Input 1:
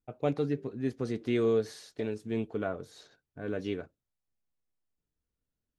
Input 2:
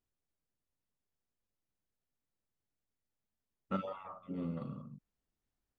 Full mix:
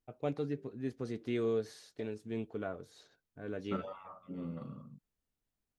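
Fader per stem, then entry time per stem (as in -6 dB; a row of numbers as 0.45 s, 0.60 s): -6.0 dB, -2.5 dB; 0.00 s, 0.00 s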